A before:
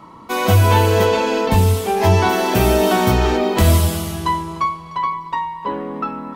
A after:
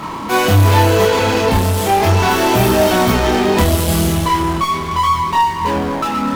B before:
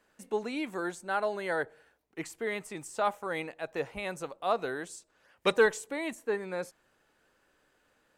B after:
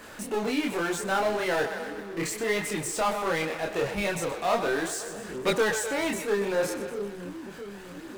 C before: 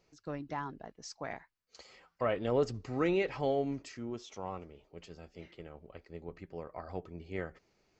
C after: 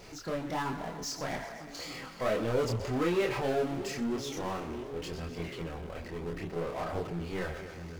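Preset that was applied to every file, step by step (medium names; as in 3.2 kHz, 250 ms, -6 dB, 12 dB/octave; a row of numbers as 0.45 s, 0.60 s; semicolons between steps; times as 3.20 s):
two-band feedback delay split 370 Hz, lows 667 ms, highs 125 ms, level -16 dB; power-law waveshaper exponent 0.5; chorus voices 2, 0.37 Hz, delay 27 ms, depth 3.6 ms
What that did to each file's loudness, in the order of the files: +3.0 LU, +4.5 LU, +2.5 LU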